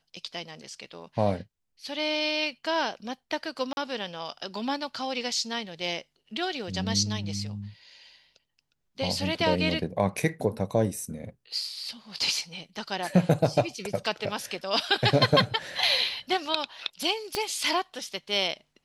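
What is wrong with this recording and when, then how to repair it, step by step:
3.73–3.77 s: dropout 41 ms
17.35 s: pop -12 dBFS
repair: de-click; interpolate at 3.73 s, 41 ms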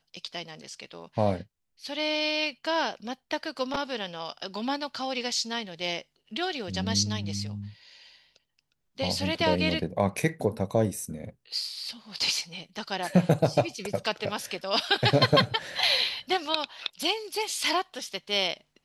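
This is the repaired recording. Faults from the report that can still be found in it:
17.35 s: pop

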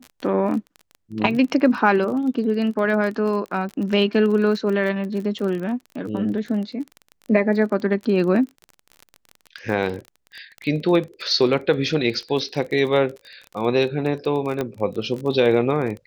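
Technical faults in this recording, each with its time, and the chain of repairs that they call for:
crackle 26 per s -28 dBFS
14.61 s: pop -12 dBFS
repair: de-click

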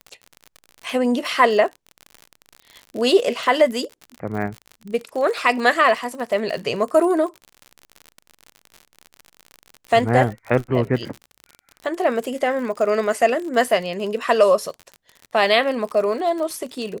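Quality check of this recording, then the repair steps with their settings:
crackle 50 per s -28 dBFS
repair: de-click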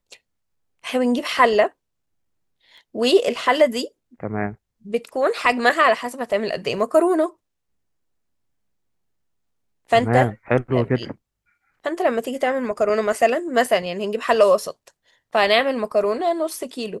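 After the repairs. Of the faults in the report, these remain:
nothing left

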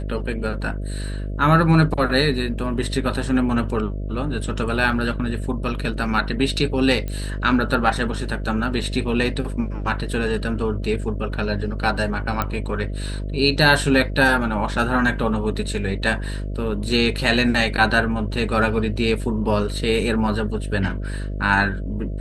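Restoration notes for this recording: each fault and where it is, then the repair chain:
buzz 50 Hz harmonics 13 -27 dBFS
7.08 s: pop -16 dBFS
12.42 s: pop -8 dBFS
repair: de-click; de-hum 50 Hz, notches 13

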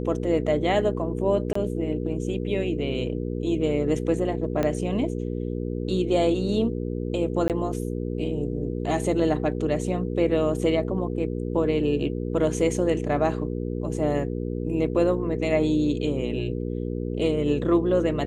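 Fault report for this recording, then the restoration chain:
hum 60 Hz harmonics 8 -29 dBFS
1.53–1.55 s: dropout 24 ms
4.63 s: pop -13 dBFS
7.48–7.50 s: dropout 18 ms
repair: de-click; de-hum 60 Hz, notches 8; interpolate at 1.53 s, 24 ms; interpolate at 7.48 s, 18 ms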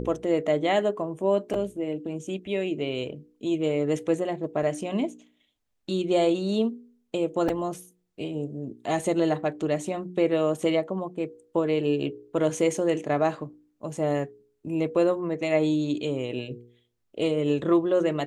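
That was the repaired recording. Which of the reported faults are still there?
4.63 s: pop

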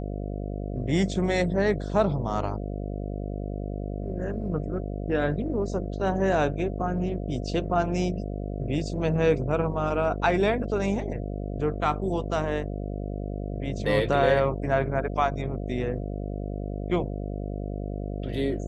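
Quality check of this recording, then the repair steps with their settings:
buzz 50 Hz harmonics 14 -32 dBFS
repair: de-hum 50 Hz, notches 14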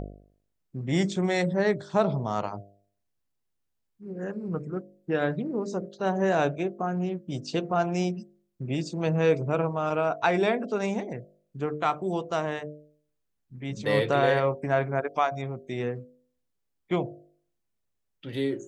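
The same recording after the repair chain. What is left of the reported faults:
nothing left

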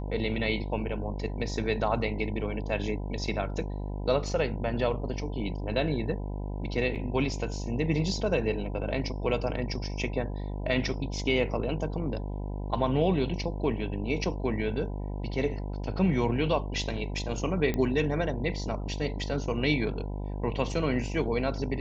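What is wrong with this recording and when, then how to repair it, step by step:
buzz 50 Hz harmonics 20 -34 dBFS
6.95–6.96 s: dropout 6.6 ms
17.74 s: pop -17 dBFS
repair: de-click; de-hum 50 Hz, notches 20; interpolate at 6.95 s, 6.6 ms

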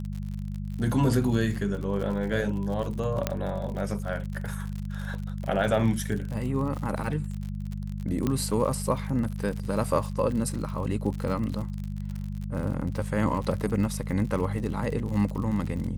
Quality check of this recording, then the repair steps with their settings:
crackle 57 per s -33 dBFS
hum 50 Hz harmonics 4 -33 dBFS
3.27 s: pop -10 dBFS
8.27 s: pop -14 dBFS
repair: de-click; de-hum 50 Hz, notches 4

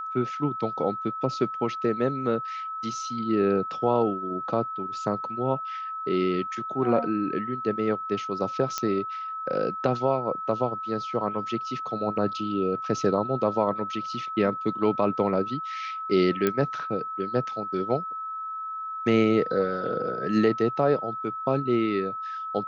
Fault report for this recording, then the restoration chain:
whine 1.3 kHz -31 dBFS
8.78 s: pop -11 dBFS
16.47 s: pop -10 dBFS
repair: de-click; band-stop 1.3 kHz, Q 30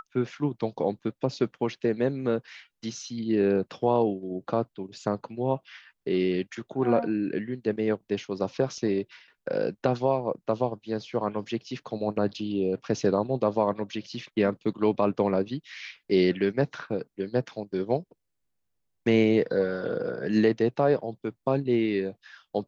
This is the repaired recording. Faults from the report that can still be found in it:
nothing left

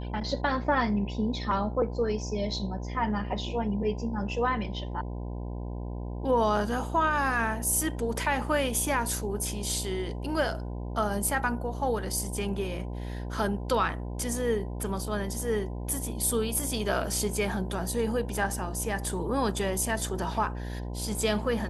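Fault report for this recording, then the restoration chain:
buzz 60 Hz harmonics 17 -35 dBFS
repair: de-hum 60 Hz, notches 17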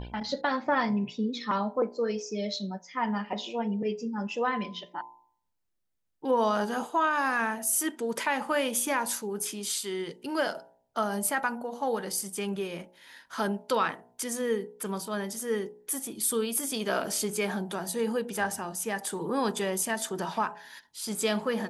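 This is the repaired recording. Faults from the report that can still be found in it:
nothing left

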